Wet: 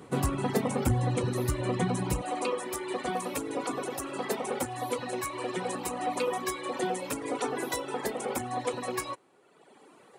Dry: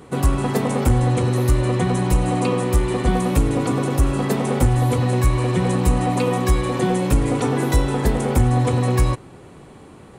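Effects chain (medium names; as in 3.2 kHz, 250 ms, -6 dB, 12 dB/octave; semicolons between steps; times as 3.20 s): high-pass 100 Hz 12 dB/octave, from 2.22 s 380 Hz; reverb removal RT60 1.3 s; trim -5 dB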